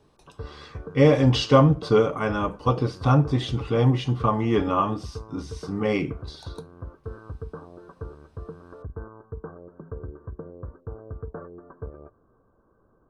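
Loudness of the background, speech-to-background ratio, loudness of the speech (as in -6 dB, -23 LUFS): -40.5 LUFS, 18.5 dB, -22.0 LUFS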